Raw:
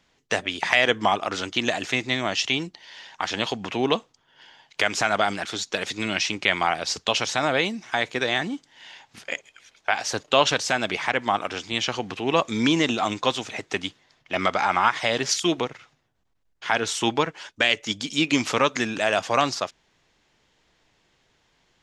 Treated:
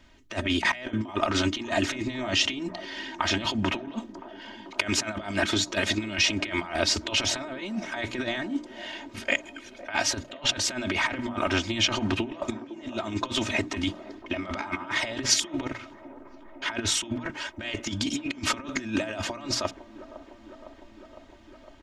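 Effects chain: tone controls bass +11 dB, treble -11 dB; compressor with a negative ratio -28 dBFS, ratio -0.5; treble shelf 5.5 kHz +10 dB; hum notches 60/120/180/240/300 Hz; comb 3.2 ms, depth 86%; feedback echo behind a band-pass 507 ms, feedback 76%, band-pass 520 Hz, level -13.5 dB; trim -2.5 dB

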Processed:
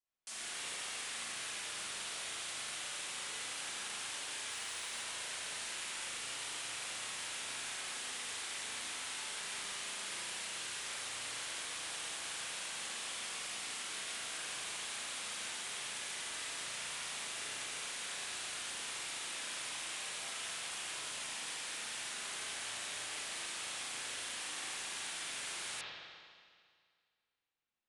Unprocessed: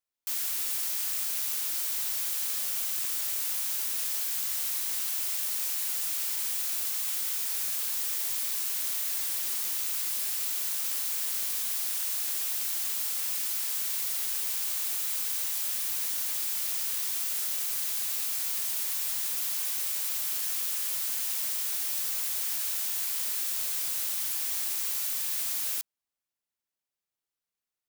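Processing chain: resampled via 22.05 kHz; spring tank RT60 2 s, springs 35/44 ms, chirp 45 ms, DRR -9 dB; 4.51–5.02 s: word length cut 10-bit, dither triangular; trim -8 dB

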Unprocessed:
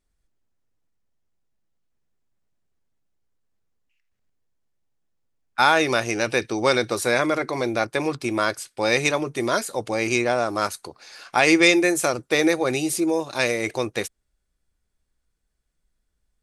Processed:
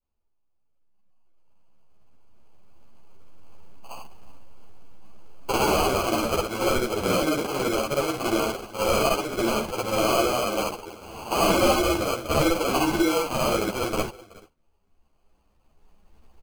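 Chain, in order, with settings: short-time spectra conjugated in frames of 145 ms; recorder AGC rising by 8.4 dB/s; peaking EQ 2.6 kHz +13 dB 0.48 oct; in parallel at +0.5 dB: peak limiter -9.5 dBFS, peak gain reduction 8.5 dB; on the sum: hard clipper -9 dBFS, distortion -13 dB; echo from a far wall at 64 m, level -20 dB; sample-and-hold 24×; spectral noise reduction 7 dB; three-phase chorus; trim -3.5 dB

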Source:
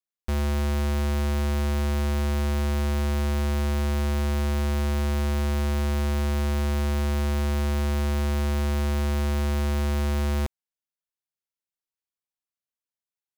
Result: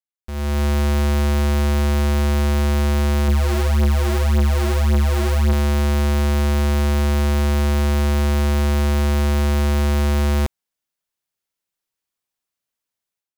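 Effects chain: level rider gain up to 16.5 dB; 3.28–5.53 s: phaser 1.8 Hz, delay 3.1 ms, feedback 66%; saturation -6.5 dBFS, distortion -11 dB; trim -7.5 dB

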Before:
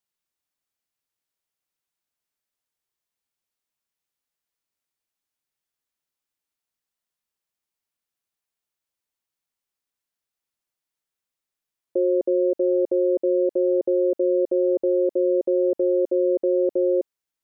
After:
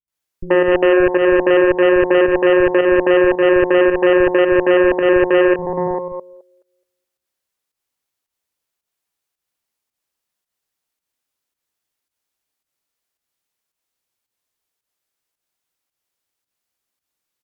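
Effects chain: reverse the whole clip; on a send: repeats whose band climbs or falls 212 ms, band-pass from 240 Hz, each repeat 0.7 oct, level -3 dB; on the sum: Chebyshev shaper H 6 -12 dB, 7 -37 dB, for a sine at -12.5 dBFS; volume shaper 110 bpm, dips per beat 1, -9 dB, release 139 ms; bands offset in time lows, highs 80 ms, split 210 Hz; trim +7.5 dB

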